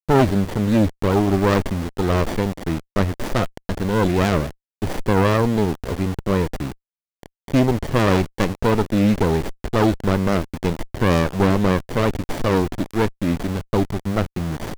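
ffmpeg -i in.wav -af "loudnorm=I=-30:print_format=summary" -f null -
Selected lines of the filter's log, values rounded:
Input Integrated:    -21.2 LUFS
Input True Peak:      -1.5 dBTP
Input LRA:             2.6 LU
Input Threshold:     -31.3 LUFS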